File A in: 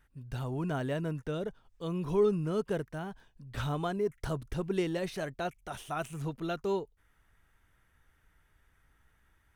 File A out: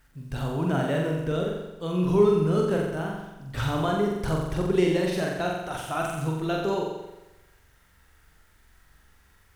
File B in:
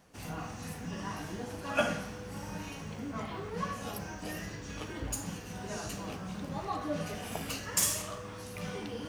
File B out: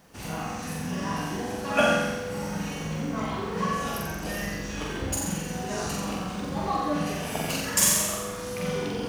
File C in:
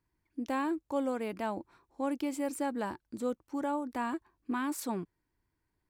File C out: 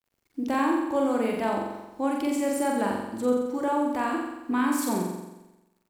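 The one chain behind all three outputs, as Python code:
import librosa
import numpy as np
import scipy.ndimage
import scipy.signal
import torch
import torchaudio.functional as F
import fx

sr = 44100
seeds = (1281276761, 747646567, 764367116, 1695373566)

y = fx.quant_dither(x, sr, seeds[0], bits=12, dither='none')
y = fx.room_flutter(y, sr, wall_m=7.6, rt60_s=1.0)
y = y * librosa.db_to_amplitude(5.0)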